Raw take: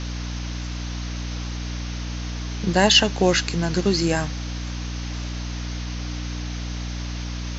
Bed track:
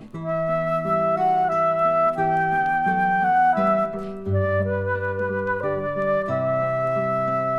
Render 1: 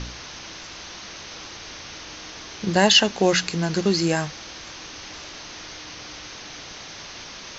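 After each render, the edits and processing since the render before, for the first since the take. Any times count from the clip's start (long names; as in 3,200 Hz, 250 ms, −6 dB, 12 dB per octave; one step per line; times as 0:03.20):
hum removal 60 Hz, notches 5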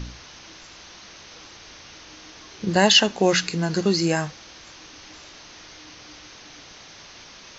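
noise reduction from a noise print 6 dB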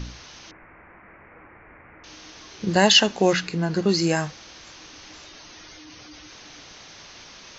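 0:00.51–0:02.04: Butterworth low-pass 2,300 Hz 72 dB per octave
0:03.33–0:03.89: low-pass filter 2,400 Hz 6 dB per octave
0:05.26–0:06.31: expanding power law on the bin magnitudes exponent 1.6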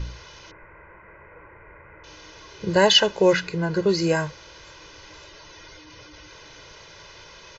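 high-shelf EQ 3,700 Hz −8.5 dB
comb filter 2 ms, depth 76%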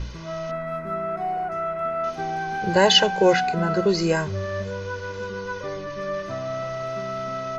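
mix in bed track −7 dB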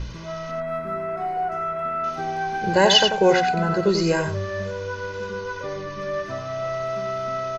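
single-tap delay 90 ms −7 dB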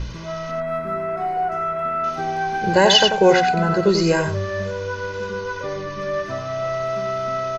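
level +3 dB
brickwall limiter −3 dBFS, peak gain reduction 2.5 dB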